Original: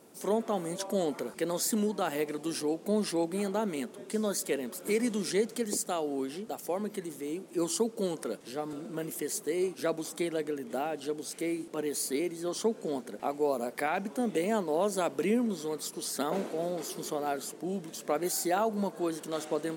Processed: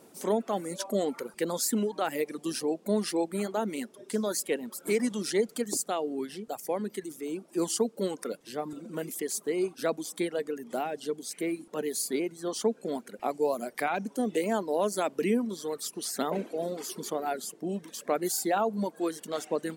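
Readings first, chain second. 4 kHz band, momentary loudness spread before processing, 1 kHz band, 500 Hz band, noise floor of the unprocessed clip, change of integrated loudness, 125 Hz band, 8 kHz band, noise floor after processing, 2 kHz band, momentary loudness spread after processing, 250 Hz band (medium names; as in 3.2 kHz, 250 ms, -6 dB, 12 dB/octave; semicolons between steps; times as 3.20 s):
+1.0 dB, 7 LU, +1.5 dB, +1.0 dB, -50 dBFS, +1.0 dB, 0.0 dB, +1.5 dB, -58 dBFS, +1.0 dB, 8 LU, +0.5 dB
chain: reverb removal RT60 1.1 s; trim +2 dB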